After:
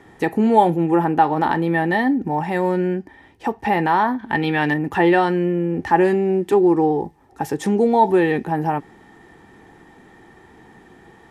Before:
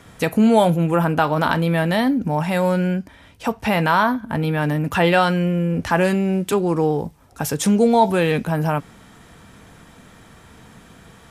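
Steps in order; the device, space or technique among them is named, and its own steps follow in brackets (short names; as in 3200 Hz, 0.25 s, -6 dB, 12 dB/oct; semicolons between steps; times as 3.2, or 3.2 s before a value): inside a helmet (high shelf 5700 Hz -6 dB; small resonant body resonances 360/810/1800 Hz, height 16 dB, ringing for 30 ms); 4.19–4.74 bell 3300 Hz +14 dB 2.1 oct; gain -7.5 dB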